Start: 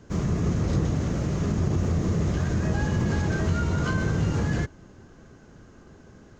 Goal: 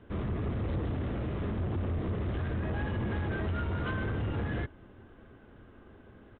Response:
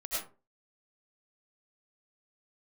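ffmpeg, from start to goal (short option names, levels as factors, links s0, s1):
-af "equalizer=f=160:t=o:w=0.27:g=-13.5,aresample=8000,asoftclip=type=tanh:threshold=0.0631,aresample=44100,volume=0.708"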